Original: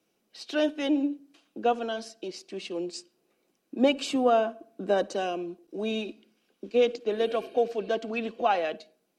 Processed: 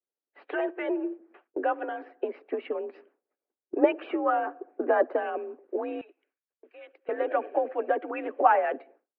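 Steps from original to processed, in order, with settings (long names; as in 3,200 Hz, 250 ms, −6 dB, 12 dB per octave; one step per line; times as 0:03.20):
single-sideband voice off tune +53 Hz 210–2,000 Hz
downward expander −57 dBFS
in parallel at 0 dB: downward compressor, threshold −36 dBFS, peak gain reduction 18 dB
on the sum: harmonic and percussive parts rebalanced harmonic −12 dB
0:06.01–0:07.09: first difference
level +6 dB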